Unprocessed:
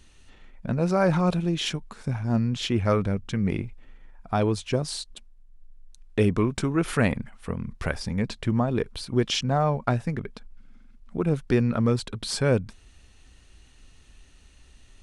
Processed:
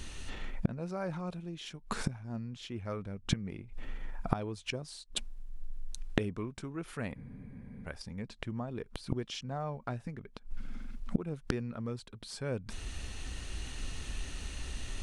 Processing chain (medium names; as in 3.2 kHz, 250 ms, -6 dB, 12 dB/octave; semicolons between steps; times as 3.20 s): inverted gate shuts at -25 dBFS, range -25 dB; gain riding within 4 dB 2 s; spectral freeze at 7.17 s, 0.70 s; trim +9.5 dB